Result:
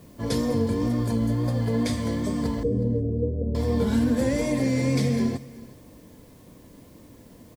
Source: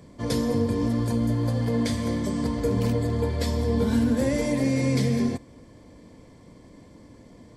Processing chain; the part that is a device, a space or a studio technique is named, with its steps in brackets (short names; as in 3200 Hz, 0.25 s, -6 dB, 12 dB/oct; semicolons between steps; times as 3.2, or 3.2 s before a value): plain cassette with noise reduction switched in (mismatched tape noise reduction decoder only; wow and flutter; white noise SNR 35 dB); 2.63–3.55 Chebyshev low-pass 520 Hz, order 4; feedback echo 0.367 s, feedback 18%, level -20.5 dB